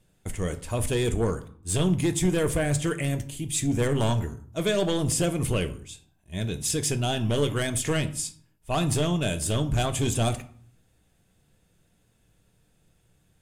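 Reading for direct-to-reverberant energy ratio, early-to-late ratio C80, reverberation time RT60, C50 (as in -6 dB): 8.5 dB, 19.0 dB, 0.55 s, 15.0 dB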